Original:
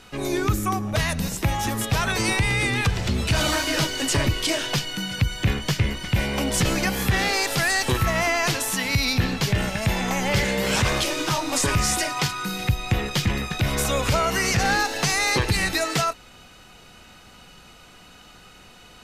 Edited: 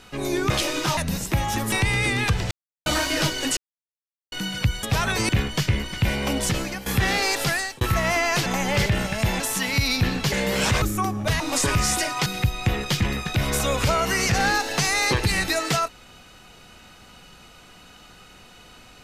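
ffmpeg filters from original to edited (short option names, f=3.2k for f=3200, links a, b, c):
-filter_complex "[0:a]asplit=19[a][b][c][d][e][f][g][h][i][j][k][l][m][n][o][p][q][r][s];[a]atrim=end=0.502[t];[b]atrim=start=10.928:end=11.402[u];[c]atrim=start=1.078:end=1.832[v];[d]atrim=start=2.288:end=3.08,asetpts=PTS-STARTPTS,afade=t=out:st=0.788:d=0.004:c=hsin[w];[e]atrim=start=3.08:end=3.43,asetpts=PTS-STARTPTS,volume=0[x];[f]atrim=start=3.43:end=4.14,asetpts=PTS-STARTPTS,afade=t=in:d=0.004:c=hsin,afade=t=out:st=0.706:d=0.004:c=hsin[y];[g]atrim=start=4.14:end=4.89,asetpts=PTS-STARTPTS,volume=0[z];[h]atrim=start=4.89:end=5.402,asetpts=PTS-STARTPTS,afade=t=in:d=0.004:c=hsin[aa];[i]atrim=start=1.828:end=2.292[ab];[j]atrim=start=5.398:end=6.97,asetpts=PTS-STARTPTS,afade=t=out:st=1.062:d=0.51:silence=0.199526[ac];[k]atrim=start=6.97:end=7.92,asetpts=PTS-STARTPTS,afade=t=in:d=0.004:c=hsin:silence=0.199526,afade=t=out:st=0.6:d=0.35[ad];[l]atrim=start=7.92:end=8.572,asetpts=PTS-STARTPTS,afade=t=in:d=0.004:c=hsin[ae];[m]atrim=start=10.028:end=10.432[af];[n]atrim=start=9.488:end=10.032[ag];[o]atrim=start=8.568:end=9.492[ah];[p]atrim=start=10.428:end=10.932[ai];[q]atrim=start=0.498:end=1.082[aj];[r]atrim=start=11.398:end=12.262[ak];[s]atrim=start=12.508[al];[t][u]acrossfade=d=0.004:c1=hsin:c2=hsin[am];[am][v]acrossfade=d=0.004:c1=hsin:c2=hsin[an];[w][x][y][z][aa]concat=n=5:v=0:a=1[ao];[an][ao]acrossfade=d=0.004:c1=hsin:c2=hsin[ap];[ap][ab]acrossfade=d=0.004:c1=hsin:c2=hsin[aq];[ac][ad][ae]concat=n=3:v=0:a=1[ar];[aq][ar]acrossfade=d=0.004:c1=hsin:c2=hsin[as];[as][af]acrossfade=d=0.004:c1=hsin:c2=hsin[at];[at][ag]acrossfade=d=0.004:c1=hsin:c2=hsin[au];[au][ah]acrossfade=d=0.004:c1=hsin:c2=hsin[av];[av][ai]acrossfade=d=0.004:c1=hsin:c2=hsin[aw];[aw][aj]acrossfade=d=0.004:c1=hsin:c2=hsin[ax];[ax][ak]acrossfade=d=0.004:c1=hsin:c2=hsin[ay];[ay][al]acrossfade=d=0.004:c1=hsin:c2=hsin"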